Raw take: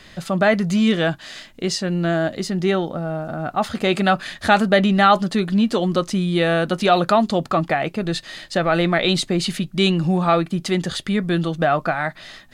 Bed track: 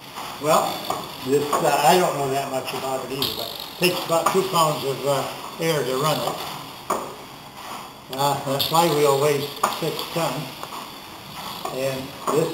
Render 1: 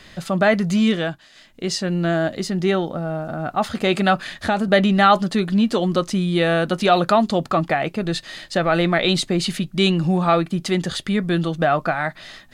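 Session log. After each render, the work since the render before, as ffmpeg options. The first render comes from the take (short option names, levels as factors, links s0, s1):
-filter_complex "[0:a]asettb=1/sr,asplit=3[s0][s1][s2];[s0]atrim=end=4.204[s3];[s1]atrim=start=4.2:end=4.68,asetpts=PTS-STARTPTS,afade=t=in:d=0.004:c=qsin,afade=t=out:st=0.476:d=0.004:c=qsin,acrossover=split=830|4100[s4][s5][s6];[s4]acompressor=threshold=0.126:ratio=4[s7];[s5]acompressor=threshold=0.0447:ratio=4[s8];[s6]acompressor=threshold=0.00891:ratio=4[s9];[s7][s8][s9]amix=inputs=3:normalize=0[s10];[s2]atrim=start=4.676[s11];[s3][s10]acrossfade=d=0.004:c1=hsin:c2=qsin[s12];[s12][s11]acrossfade=d=0.004:c1=qsin:c2=hsin,asplit=3[s13][s14][s15];[s13]atrim=end=1.29,asetpts=PTS-STARTPTS,afade=t=out:st=0.84:d=0.45:silence=0.188365[s16];[s14]atrim=start=1.29:end=1.32,asetpts=PTS-STARTPTS,volume=0.188[s17];[s15]atrim=start=1.32,asetpts=PTS-STARTPTS,afade=t=in:d=0.45:silence=0.188365[s18];[s16][s17][s18]concat=n=3:v=0:a=1"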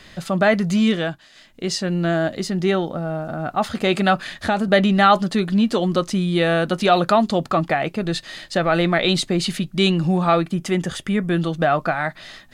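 -filter_complex "[0:a]asettb=1/sr,asplit=3[s0][s1][s2];[s0]atrim=end=10.544[s3];[s1]atrim=start=10.54:end=11.38,asetpts=PTS-STARTPTS,afade=t=in:d=0.004:c=qsin,afade=t=out:st=0.836:d=0.004:c=qsin,equalizer=f=4200:t=o:w=0.38:g=-11.5[s4];[s2]atrim=start=11.376[s5];[s3][s4]acrossfade=d=0.004:c1=hsin:c2=qsin[s6];[s6][s5]acrossfade=d=0.004:c1=qsin:c2=hsin"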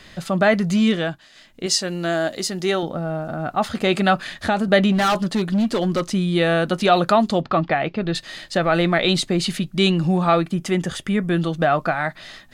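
-filter_complex "[0:a]asettb=1/sr,asplit=3[s0][s1][s2];[s0]atrim=end=1.664[s3];[s1]atrim=start=1.66:end=2.83,asetpts=PTS-STARTPTS,afade=t=in:d=0.004:c=qsin,afade=t=out:st=1.166:d=0.004:c=qsin,bass=f=250:g=-9,treble=f=4000:g=8[s4];[s2]atrim=start=2.826[s5];[s3][s4]acrossfade=d=0.004:c1=hsin:c2=qsin[s6];[s6][s5]acrossfade=d=0.004:c1=qsin:c2=hsin,asettb=1/sr,asplit=3[s7][s8][s9];[s7]atrim=end=4.924[s10];[s8]atrim=start=4.92:end=6.02,asetpts=PTS-STARTPTS,afade=t=in:d=0.004:c=qsin,afade=t=out:st=1.096:d=0.004:c=qsin,asoftclip=type=hard:threshold=0.168[s11];[s9]atrim=start=6.016[s12];[s10][s11]acrossfade=d=0.004:c1=hsin:c2=qsin[s13];[s13][s12]acrossfade=d=0.004:c1=qsin:c2=hsin,asettb=1/sr,asplit=3[s14][s15][s16];[s14]atrim=end=7.414[s17];[s15]atrim=start=7.41:end=8.15,asetpts=PTS-STARTPTS,afade=t=in:d=0.004:c=qsin,afade=t=out:st=0.736:d=0.004:c=qsin,lowpass=f=4500:w=0.5412,lowpass=f=4500:w=1.3066[s18];[s16]atrim=start=8.146[s19];[s17][s18]acrossfade=d=0.004:c1=hsin:c2=qsin[s20];[s20][s19]acrossfade=d=0.004:c1=qsin:c2=hsin"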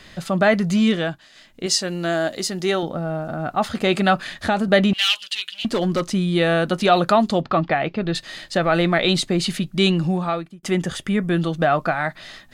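-filter_complex "[0:a]asettb=1/sr,asplit=3[s0][s1][s2];[s0]atrim=end=4.934[s3];[s1]atrim=start=4.93:end=5.65,asetpts=PTS-STARTPTS,afade=t=in:d=0.004:c=qsin,afade=t=out:st=0.716:d=0.004:c=qsin,highpass=f=2900:t=q:w=5.5[s4];[s2]atrim=start=5.646[s5];[s3][s4]acrossfade=d=0.004:c1=hsin:c2=qsin[s6];[s6][s5]acrossfade=d=0.004:c1=qsin:c2=hsin,asplit=2[s7][s8];[s7]atrim=end=10.63,asetpts=PTS-STARTPTS,afade=t=out:st=9.96:d=0.67[s9];[s8]atrim=start=10.63,asetpts=PTS-STARTPTS,afade=t=in:d=0.004:c=hsin[s10];[s9][s10]concat=n=2:v=0:a=1"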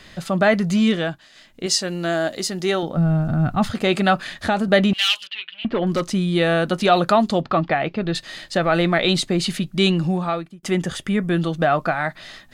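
-filter_complex "[0:a]asplit=3[s0][s1][s2];[s0]afade=t=out:st=2.96:d=0.02[s3];[s1]asubboost=boost=10.5:cutoff=160,afade=t=in:st=2.96:d=0.02,afade=t=out:st=3.69:d=0.02[s4];[s2]afade=t=in:st=3.69:d=0.02[s5];[s3][s4][s5]amix=inputs=3:normalize=0,asettb=1/sr,asplit=3[s6][s7][s8];[s6]atrim=end=5.274[s9];[s7]atrim=start=5.27:end=5.87,asetpts=PTS-STARTPTS,afade=t=in:d=0.004:c=qsin,afade=t=out:st=0.596:d=0.004:c=qsin,lowpass=f=2900:w=0.5412,lowpass=f=2900:w=1.3066[s10];[s8]atrim=start=5.866[s11];[s9][s10]acrossfade=d=0.004:c1=hsin:c2=qsin[s12];[s12][s11]acrossfade=d=0.004:c1=qsin:c2=hsin"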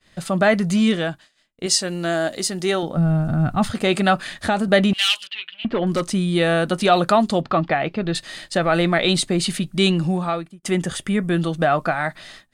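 -af "agate=range=0.0224:threshold=0.0158:ratio=3:detection=peak,equalizer=f=8900:w=2.7:g=8"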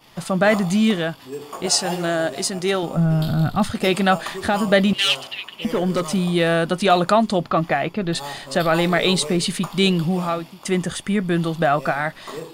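-filter_complex "[1:a]volume=0.237[s0];[0:a][s0]amix=inputs=2:normalize=0"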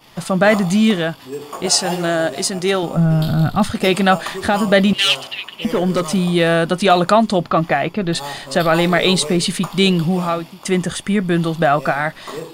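-af "volume=1.5,alimiter=limit=0.891:level=0:latency=1"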